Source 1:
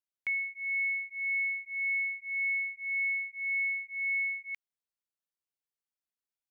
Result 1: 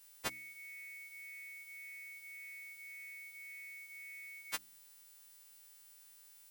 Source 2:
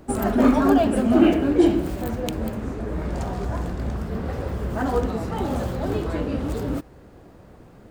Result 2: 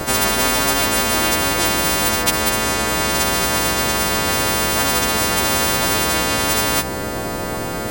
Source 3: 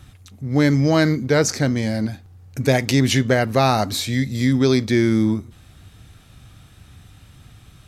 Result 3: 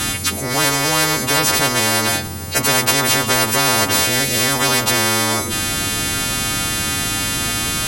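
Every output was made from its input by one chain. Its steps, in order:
partials quantised in pitch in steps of 2 st; peaking EQ 210 Hz +4.5 dB 1.7 oct; de-hum 64.66 Hz, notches 5; spectrum-flattening compressor 10:1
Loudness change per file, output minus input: -17.5 LU, +6.5 LU, +3.0 LU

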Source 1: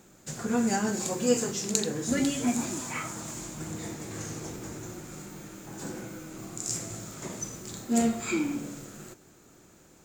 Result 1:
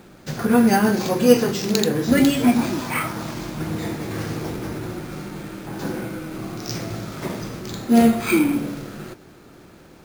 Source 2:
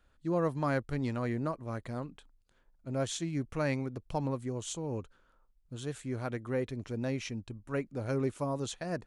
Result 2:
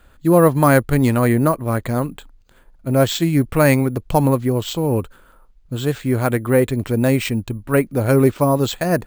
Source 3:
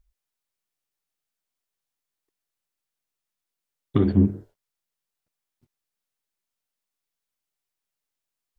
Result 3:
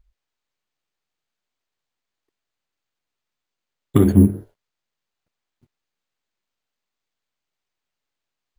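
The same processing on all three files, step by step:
careless resampling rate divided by 4×, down filtered, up hold; peak normalisation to -1.5 dBFS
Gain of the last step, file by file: +11.0 dB, +17.5 dB, +5.5 dB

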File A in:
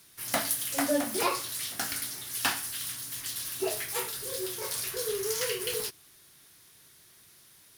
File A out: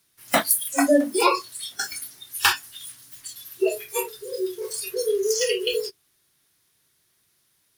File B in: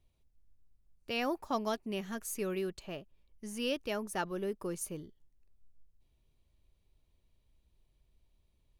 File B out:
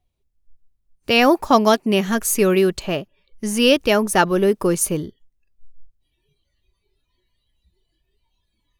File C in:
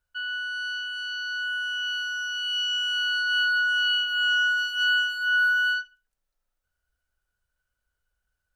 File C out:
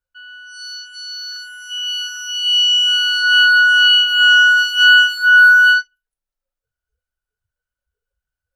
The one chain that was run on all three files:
spectral noise reduction 20 dB; peak normalisation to -2 dBFS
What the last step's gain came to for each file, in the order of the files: +10.0 dB, +19.5 dB, +14.0 dB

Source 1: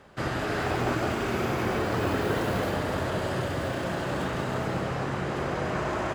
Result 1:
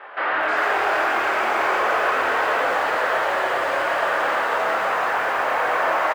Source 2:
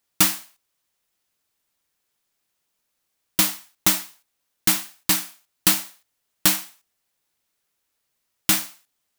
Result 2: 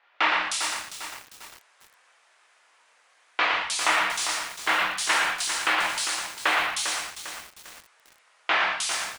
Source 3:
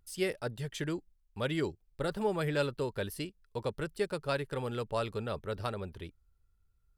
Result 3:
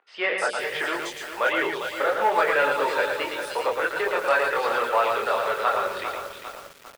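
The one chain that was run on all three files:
chorus voices 4, 0.32 Hz, delay 24 ms, depth 2.5 ms; overdrive pedal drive 28 dB, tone 6 kHz, clips at -6 dBFS; in parallel at -1 dB: compression 20:1, threshold -27 dBFS; on the sum: peaking EQ 330 Hz -3 dB 1.7 oct; on a send: delay 114 ms -5 dB; on the sum: resampled via 22.05 kHz; three-band isolator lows -20 dB, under 380 Hz, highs -12 dB, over 2.8 kHz; hum notches 60/120/180/240/300/360/420/480/540/600 Hz; three bands offset in time mids, lows, highs 140/310 ms, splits 190/3600 Hz; bit-crushed delay 400 ms, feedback 55%, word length 6-bit, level -8 dB; peak normalisation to -9 dBFS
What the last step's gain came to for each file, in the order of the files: -5.0 dB, +0.5 dB, -1.5 dB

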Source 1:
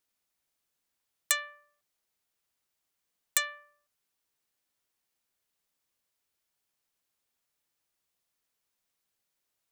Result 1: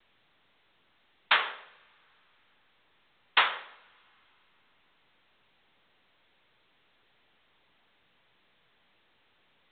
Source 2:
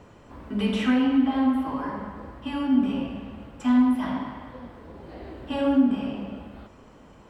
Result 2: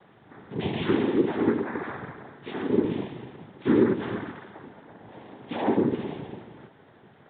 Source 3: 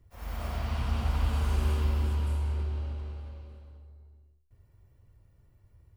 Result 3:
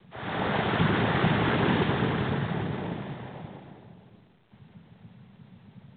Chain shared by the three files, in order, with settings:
noise-vocoded speech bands 6; two-slope reverb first 0.85 s, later 3.2 s, from -19 dB, DRR 16.5 dB; µ-law 64 kbps 8 kHz; normalise loudness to -27 LUFS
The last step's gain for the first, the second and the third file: +9.5 dB, -2.5 dB, +13.5 dB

